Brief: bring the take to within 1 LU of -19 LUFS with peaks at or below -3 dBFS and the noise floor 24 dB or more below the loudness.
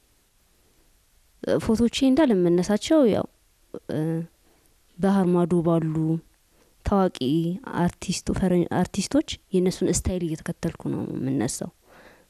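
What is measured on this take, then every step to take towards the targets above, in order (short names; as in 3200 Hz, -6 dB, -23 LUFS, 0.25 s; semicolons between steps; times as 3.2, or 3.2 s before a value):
loudness -24.0 LUFS; peak -10.0 dBFS; loudness target -19.0 LUFS
-> gain +5 dB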